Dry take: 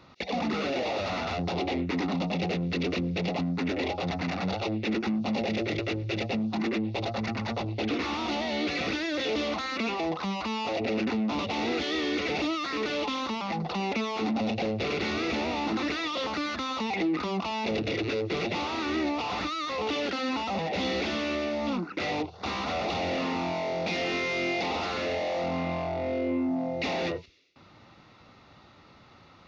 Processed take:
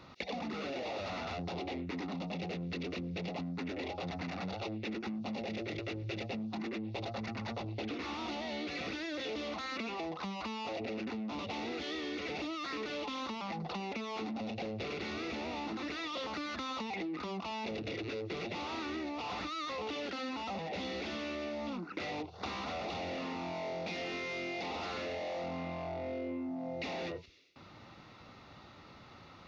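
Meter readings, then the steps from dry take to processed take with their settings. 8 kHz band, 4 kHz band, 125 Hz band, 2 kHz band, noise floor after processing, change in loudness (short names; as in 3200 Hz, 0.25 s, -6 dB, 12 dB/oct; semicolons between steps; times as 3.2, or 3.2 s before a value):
n/a, -9.0 dB, -9.0 dB, -9.0 dB, -55 dBFS, -9.5 dB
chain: compressor, threshold -37 dBFS, peak gain reduction 12 dB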